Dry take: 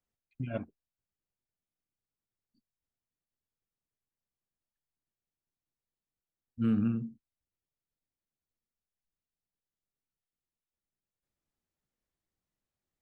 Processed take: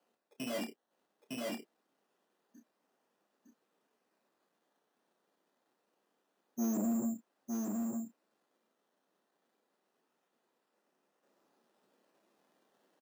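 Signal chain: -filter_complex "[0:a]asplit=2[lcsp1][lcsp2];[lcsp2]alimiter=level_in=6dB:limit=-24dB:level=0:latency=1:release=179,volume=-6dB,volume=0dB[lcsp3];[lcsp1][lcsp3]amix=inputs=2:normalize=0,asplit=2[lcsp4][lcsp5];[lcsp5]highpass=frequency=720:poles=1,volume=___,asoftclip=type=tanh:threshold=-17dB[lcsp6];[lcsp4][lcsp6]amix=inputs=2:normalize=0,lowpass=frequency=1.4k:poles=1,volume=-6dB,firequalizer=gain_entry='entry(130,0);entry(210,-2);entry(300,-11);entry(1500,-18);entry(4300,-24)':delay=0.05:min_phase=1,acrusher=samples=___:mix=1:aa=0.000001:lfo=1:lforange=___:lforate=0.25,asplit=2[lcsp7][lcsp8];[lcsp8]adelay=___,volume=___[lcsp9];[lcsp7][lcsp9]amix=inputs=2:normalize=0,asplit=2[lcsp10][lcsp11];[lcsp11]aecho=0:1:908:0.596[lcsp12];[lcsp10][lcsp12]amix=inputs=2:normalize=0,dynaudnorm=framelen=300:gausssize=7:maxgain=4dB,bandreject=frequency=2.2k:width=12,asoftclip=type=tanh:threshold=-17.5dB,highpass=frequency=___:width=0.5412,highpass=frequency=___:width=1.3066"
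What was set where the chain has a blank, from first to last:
36dB, 12, 12, 30, -10dB, 290, 290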